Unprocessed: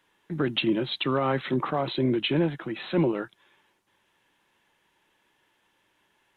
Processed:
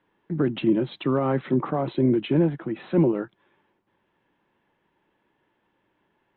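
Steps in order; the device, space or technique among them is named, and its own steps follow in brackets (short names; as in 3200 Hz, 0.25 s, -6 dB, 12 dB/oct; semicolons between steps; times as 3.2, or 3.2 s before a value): phone in a pocket (LPF 3600 Hz 12 dB/oct; bell 220 Hz +5 dB 2.5 oct; high shelf 2100 Hz -11 dB)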